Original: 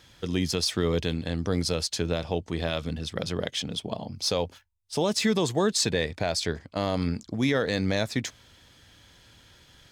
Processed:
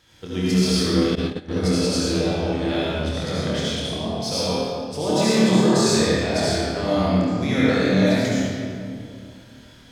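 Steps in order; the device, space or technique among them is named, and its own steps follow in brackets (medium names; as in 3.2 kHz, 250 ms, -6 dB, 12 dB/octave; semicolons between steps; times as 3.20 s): tunnel (flutter echo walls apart 4.6 m, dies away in 0.34 s; reverberation RT60 2.4 s, pre-delay 64 ms, DRR -8.5 dB); 1.15–1.64 s: gate -16 dBFS, range -17 dB; trim -4.5 dB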